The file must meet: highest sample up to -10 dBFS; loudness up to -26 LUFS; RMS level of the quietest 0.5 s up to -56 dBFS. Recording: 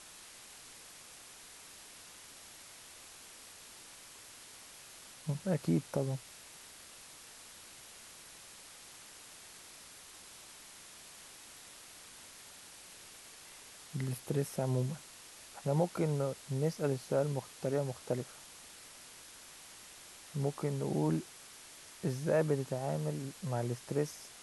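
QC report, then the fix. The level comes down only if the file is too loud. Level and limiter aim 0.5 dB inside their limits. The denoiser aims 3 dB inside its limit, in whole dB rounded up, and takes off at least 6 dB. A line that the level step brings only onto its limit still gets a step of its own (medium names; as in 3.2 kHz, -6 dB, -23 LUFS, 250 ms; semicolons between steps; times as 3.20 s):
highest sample -18.0 dBFS: pass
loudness -35.5 LUFS: pass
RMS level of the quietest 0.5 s -54 dBFS: fail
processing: noise reduction 6 dB, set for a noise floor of -54 dBFS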